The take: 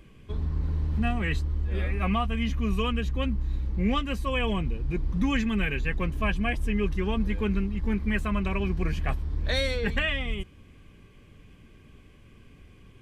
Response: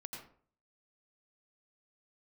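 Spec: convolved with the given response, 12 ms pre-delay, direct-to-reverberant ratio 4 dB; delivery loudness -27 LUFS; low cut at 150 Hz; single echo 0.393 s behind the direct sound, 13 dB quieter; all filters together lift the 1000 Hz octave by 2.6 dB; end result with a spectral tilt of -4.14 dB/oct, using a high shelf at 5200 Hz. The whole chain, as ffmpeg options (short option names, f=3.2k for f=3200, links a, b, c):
-filter_complex "[0:a]highpass=150,equalizer=f=1k:t=o:g=3.5,highshelf=f=5.2k:g=-4.5,aecho=1:1:393:0.224,asplit=2[a][b];[1:a]atrim=start_sample=2205,adelay=12[c];[b][c]afir=irnorm=-1:irlink=0,volume=-1dB[d];[a][d]amix=inputs=2:normalize=0,volume=2dB"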